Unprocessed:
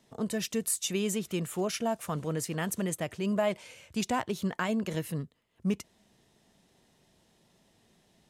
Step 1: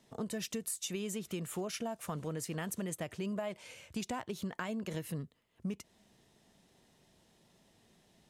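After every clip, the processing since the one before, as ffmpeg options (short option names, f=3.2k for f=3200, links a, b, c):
-af "acompressor=threshold=-34dB:ratio=6,volume=-1dB"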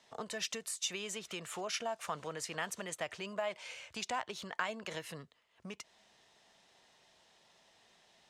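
-filter_complex "[0:a]acrossover=split=570 7500:gain=0.141 1 0.141[a][b][c];[a][b][c]amix=inputs=3:normalize=0,volume=5.5dB"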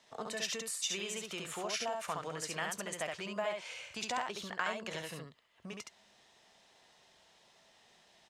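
-af "aecho=1:1:20|69:0.15|0.668"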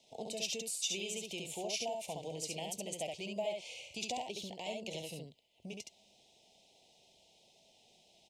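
-af "asuperstop=centerf=1400:order=8:qfactor=0.88"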